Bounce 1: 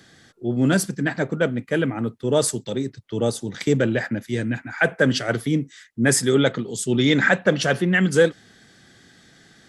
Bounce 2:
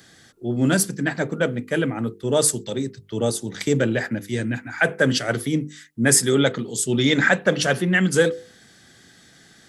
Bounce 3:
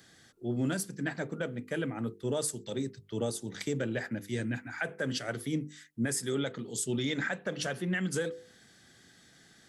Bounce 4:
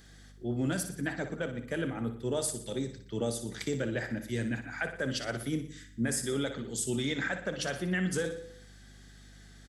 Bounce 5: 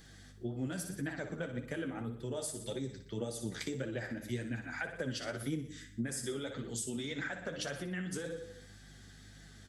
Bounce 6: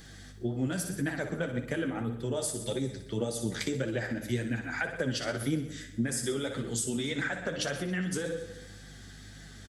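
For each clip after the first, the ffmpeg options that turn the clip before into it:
-af "highshelf=f=8000:g=9.5,bandreject=f=50:t=h:w=6,bandreject=f=100:t=h:w=6,bandreject=f=150:t=h:w=6,bandreject=f=200:t=h:w=6,bandreject=f=250:t=h:w=6,bandreject=f=300:t=h:w=6,bandreject=f=350:t=h:w=6,bandreject=f=400:t=h:w=6,bandreject=f=450:t=h:w=6,bandreject=f=500:t=h:w=6"
-af "alimiter=limit=0.2:level=0:latency=1:release=312,volume=0.398"
-filter_complex "[0:a]aeval=exprs='val(0)+0.00141*(sin(2*PI*50*n/s)+sin(2*PI*2*50*n/s)/2+sin(2*PI*3*50*n/s)/3+sin(2*PI*4*50*n/s)/4+sin(2*PI*5*50*n/s)/5)':c=same,asplit=2[s0][s1];[s1]aecho=0:1:60|120|180|240|300:0.335|0.164|0.0804|0.0394|0.0193[s2];[s0][s2]amix=inputs=2:normalize=0"
-af "acompressor=threshold=0.0178:ratio=6,flanger=delay=5.7:depth=7.1:regen=34:speed=1.8:shape=triangular,volume=1.5"
-af "aecho=1:1:137|274|411|548|685:0.119|0.0654|0.036|0.0198|0.0109,volume=2.11"

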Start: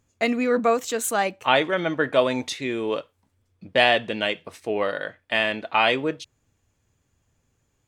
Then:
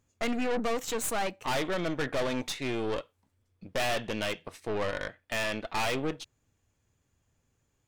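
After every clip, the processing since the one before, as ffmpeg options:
-af "aeval=exprs='(tanh(22.4*val(0)+0.75)-tanh(0.75))/22.4':c=same"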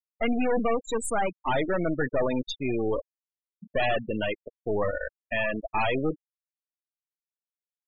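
-af "afftfilt=real='re*gte(hypot(re,im),0.0501)':imag='im*gte(hypot(re,im),0.0501)':win_size=1024:overlap=0.75,volume=1.78"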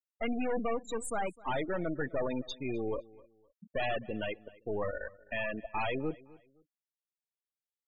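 -filter_complex "[0:a]asplit=2[s0][s1];[s1]adelay=257,lowpass=f=4700:p=1,volume=0.0841,asplit=2[s2][s3];[s3]adelay=257,lowpass=f=4700:p=1,volume=0.29[s4];[s0][s2][s4]amix=inputs=3:normalize=0,volume=0.422"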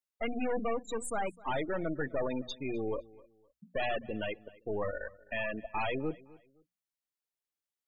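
-af "bandreject=f=60:t=h:w=6,bandreject=f=120:t=h:w=6,bandreject=f=180:t=h:w=6,bandreject=f=240:t=h:w=6"

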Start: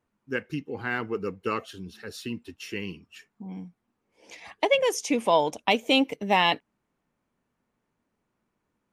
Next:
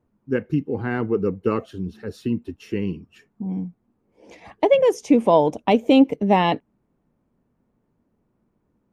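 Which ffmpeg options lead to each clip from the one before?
-af "tiltshelf=f=970:g=9.5,volume=1.33"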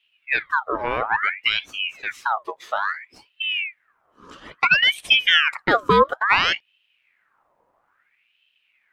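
-filter_complex "[0:a]asplit=2[s0][s1];[s1]acompressor=threshold=0.0501:ratio=6,volume=0.891[s2];[s0][s2]amix=inputs=2:normalize=0,aeval=exprs='val(0)*sin(2*PI*1800*n/s+1800*0.6/0.59*sin(2*PI*0.59*n/s))':c=same"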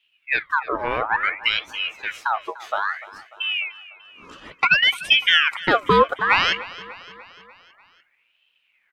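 -af "aecho=1:1:296|592|888|1184|1480:0.126|0.0718|0.0409|0.0233|0.0133"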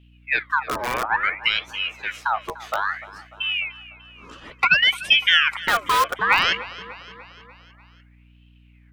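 -filter_complex "[0:a]acrossover=split=690|960[s0][s1][s2];[s0]aeval=exprs='(mod(15*val(0)+1,2)-1)/15':c=same[s3];[s3][s1][s2]amix=inputs=3:normalize=0,aeval=exprs='val(0)+0.00282*(sin(2*PI*60*n/s)+sin(2*PI*2*60*n/s)/2+sin(2*PI*3*60*n/s)/3+sin(2*PI*4*60*n/s)/4+sin(2*PI*5*60*n/s)/5)':c=same"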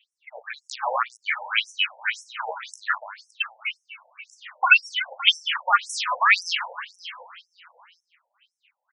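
-af "aecho=1:1:40|50|132|140|566:0.211|0.106|0.2|0.106|0.126,afftfilt=real='re*between(b*sr/1024,660*pow(7700/660,0.5+0.5*sin(2*PI*1.9*pts/sr))/1.41,660*pow(7700/660,0.5+0.5*sin(2*PI*1.9*pts/sr))*1.41)':imag='im*between(b*sr/1024,660*pow(7700/660,0.5+0.5*sin(2*PI*1.9*pts/sr))/1.41,660*pow(7700/660,0.5+0.5*sin(2*PI*1.9*pts/sr))*1.41)':win_size=1024:overlap=0.75,volume=1.78"

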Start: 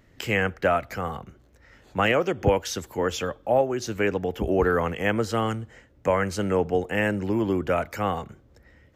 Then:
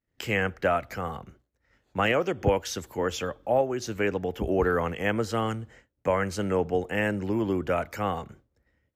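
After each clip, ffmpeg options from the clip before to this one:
-af "agate=range=0.0224:threshold=0.00631:ratio=3:detection=peak,volume=0.75"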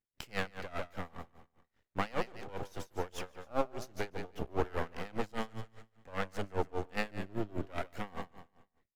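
-af "aeval=exprs='max(val(0),0)':c=same,aecho=1:1:146|292|438|584:0.335|0.131|0.0509|0.0199,aeval=exprs='val(0)*pow(10,-24*(0.5-0.5*cos(2*PI*5*n/s))/20)':c=same,volume=0.794"

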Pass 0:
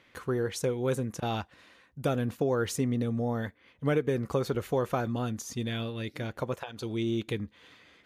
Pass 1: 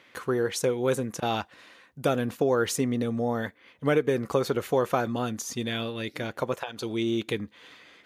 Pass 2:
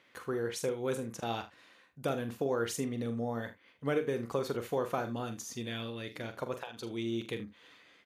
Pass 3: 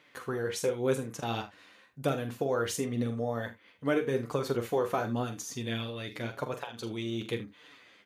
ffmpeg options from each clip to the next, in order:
-af "highpass=f=260:p=1,volume=1.88"
-af "aecho=1:1:43|77:0.335|0.15,volume=0.376"
-af "flanger=delay=6.6:depth=3.8:regen=37:speed=0.92:shape=sinusoidal,volume=2.24"

